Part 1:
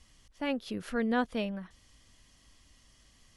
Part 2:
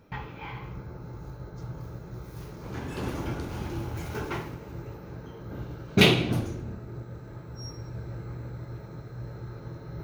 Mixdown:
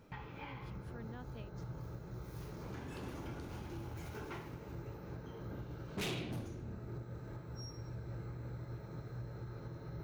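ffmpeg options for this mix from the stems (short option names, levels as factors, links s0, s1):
-filter_complex "[0:a]volume=0.126[s0];[1:a]asoftclip=type=hard:threshold=0.0668,volume=0.668[s1];[s0][s1]amix=inputs=2:normalize=0,alimiter=level_in=4.22:limit=0.0631:level=0:latency=1:release=347,volume=0.237"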